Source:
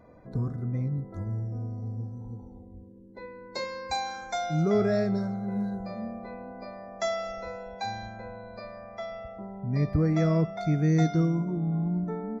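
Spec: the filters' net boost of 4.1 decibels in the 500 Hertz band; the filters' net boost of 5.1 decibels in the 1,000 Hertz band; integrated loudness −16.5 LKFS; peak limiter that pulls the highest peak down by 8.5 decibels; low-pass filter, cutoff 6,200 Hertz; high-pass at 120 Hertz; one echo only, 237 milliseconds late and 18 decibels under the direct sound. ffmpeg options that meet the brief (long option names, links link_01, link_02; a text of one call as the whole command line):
ffmpeg -i in.wav -af "highpass=120,lowpass=6200,equalizer=frequency=500:width_type=o:gain=3.5,equalizer=frequency=1000:width_type=o:gain=6,alimiter=limit=-20.5dB:level=0:latency=1,aecho=1:1:237:0.126,volume=15dB" out.wav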